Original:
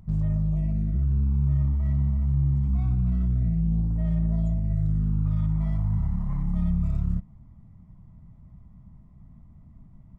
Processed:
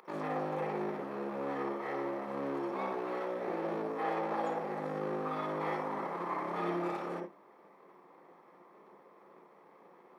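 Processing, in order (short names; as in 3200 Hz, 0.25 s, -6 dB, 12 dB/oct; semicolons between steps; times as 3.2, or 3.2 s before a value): minimum comb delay 0.89 ms; HPF 500 Hz 24 dB/oct; reverb RT60 0.15 s, pre-delay 50 ms, DRR 3.5 dB; gain +4.5 dB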